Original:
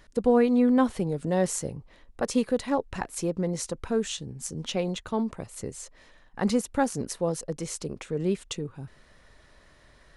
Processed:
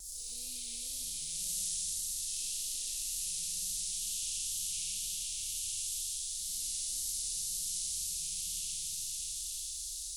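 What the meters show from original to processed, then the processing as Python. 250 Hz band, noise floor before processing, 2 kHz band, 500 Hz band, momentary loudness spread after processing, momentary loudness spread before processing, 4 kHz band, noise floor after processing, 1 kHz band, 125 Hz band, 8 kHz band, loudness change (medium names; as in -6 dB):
under -35 dB, -57 dBFS, -15.5 dB, under -40 dB, 4 LU, 16 LU, +2.5 dB, -42 dBFS, under -40 dB, -24.5 dB, +6.0 dB, -6.5 dB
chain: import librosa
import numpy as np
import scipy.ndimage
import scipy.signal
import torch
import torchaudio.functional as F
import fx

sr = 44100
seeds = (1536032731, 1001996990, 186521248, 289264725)

p1 = fx.spec_blur(x, sr, span_ms=310.0)
p2 = scipy.signal.sosfilt(scipy.signal.cheby2(4, 70, [200.0, 1700.0], 'bandstop', fs=sr, output='sos'), p1)
p3 = fx.peak_eq(p2, sr, hz=130.0, db=-14.5, octaves=0.33)
p4 = fx.rev_schroeder(p3, sr, rt60_s=3.0, comb_ms=29, drr_db=-9.5)
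p5 = fx.wow_flutter(p4, sr, seeds[0], rate_hz=2.1, depth_cents=60.0)
p6 = fx.low_shelf(p5, sr, hz=370.0, db=-4.5)
p7 = p6 + fx.echo_stepped(p6, sr, ms=293, hz=1200.0, octaves=0.7, feedback_pct=70, wet_db=-0.5, dry=0)
y = fx.spectral_comp(p7, sr, ratio=4.0)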